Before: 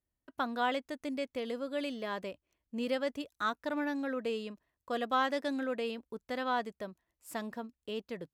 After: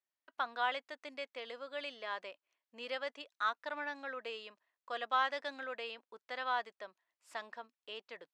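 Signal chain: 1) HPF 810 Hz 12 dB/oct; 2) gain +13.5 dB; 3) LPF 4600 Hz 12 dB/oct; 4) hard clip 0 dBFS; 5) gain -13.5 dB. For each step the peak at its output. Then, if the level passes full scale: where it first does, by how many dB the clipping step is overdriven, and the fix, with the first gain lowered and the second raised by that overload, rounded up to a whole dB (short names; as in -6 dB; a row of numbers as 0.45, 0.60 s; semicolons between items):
-19.5, -6.0, -6.0, -6.0, -19.5 dBFS; no overload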